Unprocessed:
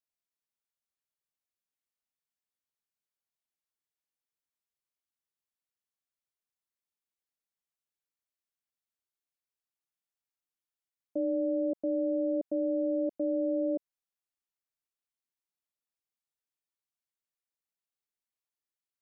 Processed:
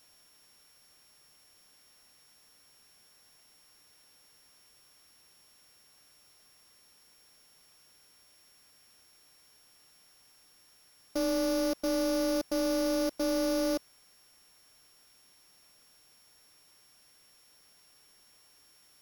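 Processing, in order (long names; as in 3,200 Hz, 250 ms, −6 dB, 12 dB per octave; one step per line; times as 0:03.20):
samples sorted by size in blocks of 8 samples
power curve on the samples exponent 0.5
level −1.5 dB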